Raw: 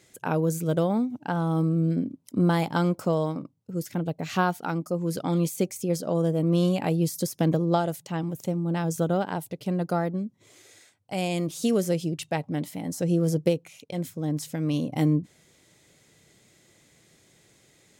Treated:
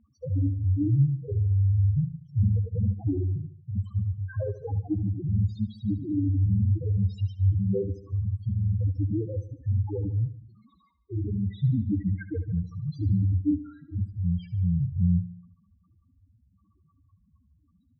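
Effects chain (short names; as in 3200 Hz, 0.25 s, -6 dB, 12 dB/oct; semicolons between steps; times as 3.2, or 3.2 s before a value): delay-line pitch shifter -9.5 st; in parallel at +1.5 dB: limiter -20.5 dBFS, peak gain reduction 10.5 dB; on the sum: loudest bins only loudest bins 2; air absorption 280 m; feedback echo 74 ms, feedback 53%, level -14.5 dB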